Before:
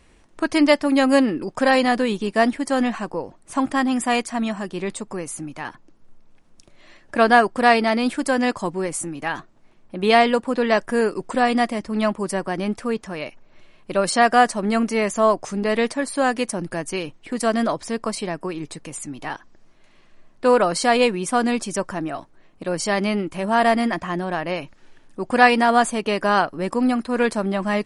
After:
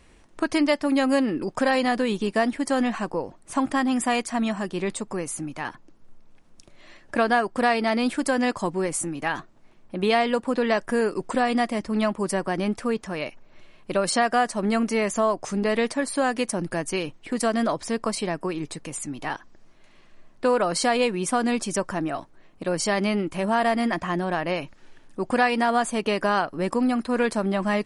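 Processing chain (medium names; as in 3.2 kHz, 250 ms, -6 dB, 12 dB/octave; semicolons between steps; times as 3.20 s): compression 2.5:1, threshold -20 dBFS, peak gain reduction 8.5 dB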